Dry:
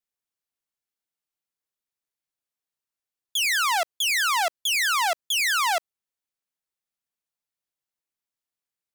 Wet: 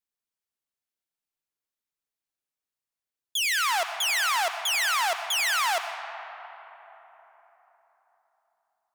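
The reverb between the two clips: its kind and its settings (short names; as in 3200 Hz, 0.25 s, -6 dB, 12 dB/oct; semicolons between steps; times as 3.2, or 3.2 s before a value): digital reverb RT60 4.2 s, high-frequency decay 0.45×, pre-delay 45 ms, DRR 7.5 dB; gain -2.5 dB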